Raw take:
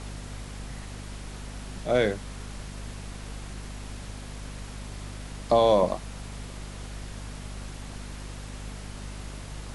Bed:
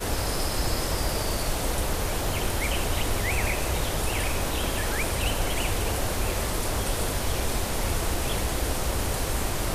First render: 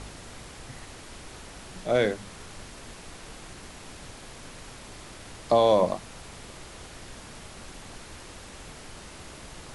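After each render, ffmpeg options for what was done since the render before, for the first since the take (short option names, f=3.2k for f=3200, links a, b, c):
-af "bandreject=f=50:t=h:w=4,bandreject=f=100:t=h:w=4,bandreject=f=150:t=h:w=4,bandreject=f=200:t=h:w=4,bandreject=f=250:t=h:w=4"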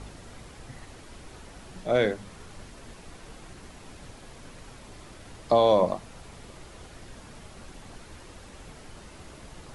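-af "afftdn=nr=6:nf=-45"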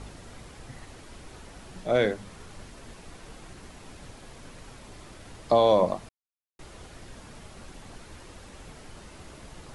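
-filter_complex "[0:a]asplit=3[a][b][c];[a]atrim=end=6.09,asetpts=PTS-STARTPTS,afade=t=out:st=6.086:d=0.004:c=hsin[d];[b]atrim=start=6.09:end=6.59,asetpts=PTS-STARTPTS,volume=0[e];[c]atrim=start=6.59,asetpts=PTS-STARTPTS,afade=t=in:d=0.004:c=hsin[f];[d][e][f]concat=n=3:v=0:a=1"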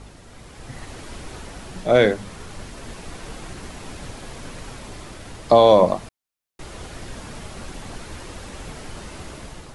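-af "dynaudnorm=f=270:g=5:m=10dB"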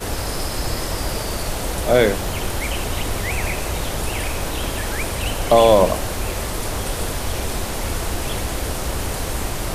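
-filter_complex "[1:a]volume=2.5dB[a];[0:a][a]amix=inputs=2:normalize=0"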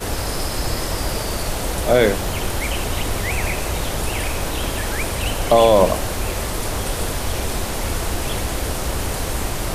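-af "volume=1dB,alimiter=limit=-3dB:level=0:latency=1"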